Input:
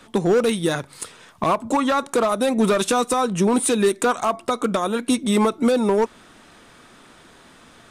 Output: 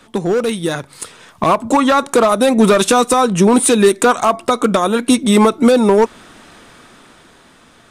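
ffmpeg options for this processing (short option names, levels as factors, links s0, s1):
-af "dynaudnorm=f=220:g=11:m=2.51,volume=1.19"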